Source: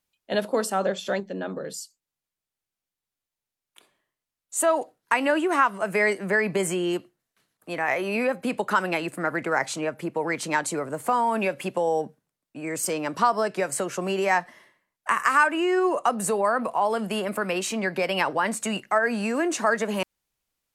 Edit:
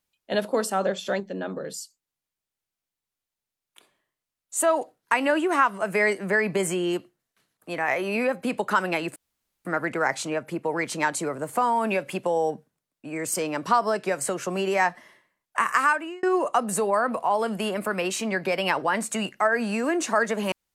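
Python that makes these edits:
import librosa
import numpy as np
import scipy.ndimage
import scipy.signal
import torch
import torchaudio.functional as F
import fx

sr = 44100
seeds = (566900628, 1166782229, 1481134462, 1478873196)

y = fx.edit(x, sr, fx.insert_room_tone(at_s=9.16, length_s=0.49),
    fx.fade_out_span(start_s=15.3, length_s=0.44), tone=tone)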